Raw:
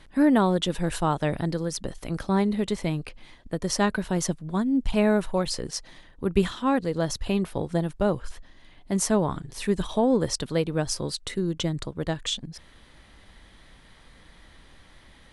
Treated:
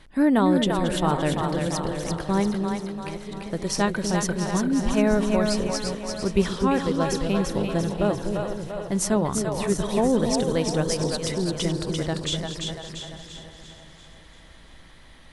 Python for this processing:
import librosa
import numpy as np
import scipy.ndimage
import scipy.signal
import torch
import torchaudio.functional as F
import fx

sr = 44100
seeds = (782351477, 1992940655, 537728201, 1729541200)

y = fx.reverse_delay_fb(x, sr, ms=376, feedback_pct=54, wet_db=-11)
y = fx.level_steps(y, sr, step_db=22, at=(2.57, 3.06))
y = fx.echo_split(y, sr, split_hz=470.0, low_ms=251, high_ms=343, feedback_pct=52, wet_db=-4)